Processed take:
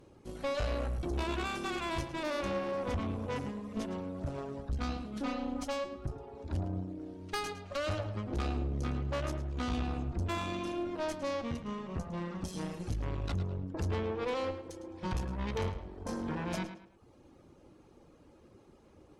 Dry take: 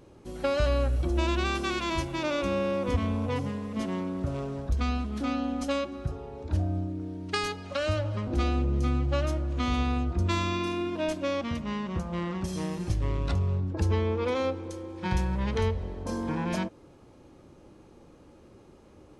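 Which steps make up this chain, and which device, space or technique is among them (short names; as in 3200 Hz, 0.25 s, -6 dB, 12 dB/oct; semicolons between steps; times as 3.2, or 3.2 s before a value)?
reverb removal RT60 0.76 s; rockabilly slapback (tube stage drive 29 dB, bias 0.7; tape echo 0.108 s, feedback 34%, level -9 dB, low-pass 4600 Hz)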